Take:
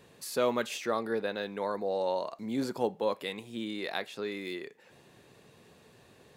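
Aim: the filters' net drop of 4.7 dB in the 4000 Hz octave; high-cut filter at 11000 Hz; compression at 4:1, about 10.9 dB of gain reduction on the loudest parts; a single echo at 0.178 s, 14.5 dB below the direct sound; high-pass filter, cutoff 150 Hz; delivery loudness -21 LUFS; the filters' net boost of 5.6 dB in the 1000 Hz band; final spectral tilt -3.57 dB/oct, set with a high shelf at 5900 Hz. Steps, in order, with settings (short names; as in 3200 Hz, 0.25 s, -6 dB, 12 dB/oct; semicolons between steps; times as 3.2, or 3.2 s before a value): HPF 150 Hz; LPF 11000 Hz; bell 1000 Hz +7 dB; bell 4000 Hz -8 dB; high shelf 5900 Hz +6 dB; compressor 4:1, threshold -35 dBFS; echo 0.178 s -14.5 dB; gain +18 dB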